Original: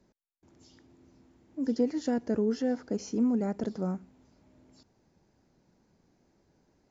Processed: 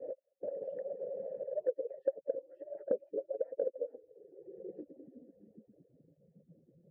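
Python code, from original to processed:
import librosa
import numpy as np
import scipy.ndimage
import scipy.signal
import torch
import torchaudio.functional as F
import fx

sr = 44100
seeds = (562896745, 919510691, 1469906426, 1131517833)

y = fx.hpss_only(x, sr, part='percussive')
y = fx.filter_sweep_lowpass(y, sr, from_hz=580.0, to_hz=160.0, start_s=3.55, end_s=6.13, q=6.9)
y = fx.vowel_filter(y, sr, vowel='e')
y = fx.band_squash(y, sr, depth_pct=100)
y = y * librosa.db_to_amplitude(2.5)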